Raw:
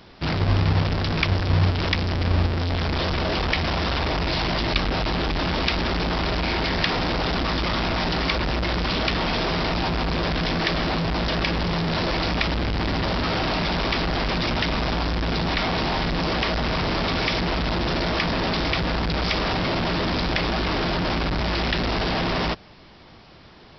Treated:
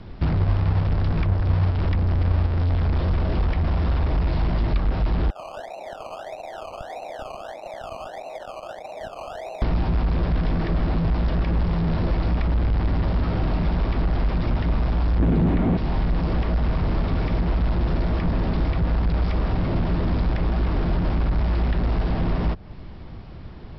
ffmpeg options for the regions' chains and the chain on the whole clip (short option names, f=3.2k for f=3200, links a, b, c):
-filter_complex "[0:a]asettb=1/sr,asplit=3[a][b][c];[a]atrim=end=5.304[d];[b]atrim=start=5.3:end=9.62,asetpts=PTS-STARTPTS,afade=t=in:d=0.004:c=qsin,afade=t=out:st=4.316:d=0.004:c=qsin,asuperpass=centerf=680:order=4:qfactor=2.9,acrusher=samples=19:mix=1:aa=0.000001:lfo=1:lforange=11.4:lforate=1.6,asoftclip=type=hard:threshold=-27dB[e];[c]atrim=start=9.616[f];[d][e]acrossfade=d=0.004:c1=hsin:c2=qsin[g];[g][f]acrossfade=d=0.004:c1=qsin:c2=hsin,asettb=1/sr,asplit=3[h][i][j];[h]atrim=end=15.194[k];[i]atrim=start=15.19:end=15.77,asetpts=PTS-STARTPTS,afade=t=in:d=0.004:c=qsin,afade=t=out:st=0.576:d=0.004:c=qsin,lowpass=2.8k,equalizer=f=260:w=0.43:g=14,acrusher=bits=8:dc=4:mix=0:aa=0.000001[l];[j]atrim=start=15.766[m];[k][l]acrossfade=d=0.004:c1=hsin:c2=qsin[n];[n][m]acrossfade=d=0.004:c1=qsin:c2=hsin,aemphasis=mode=reproduction:type=riaa,acrossover=split=510|1600[o][p][q];[o]acompressor=threshold=-20dB:ratio=4[r];[p]acompressor=threshold=-35dB:ratio=4[s];[q]acompressor=threshold=-44dB:ratio=4[t];[r][s][t]amix=inputs=3:normalize=0"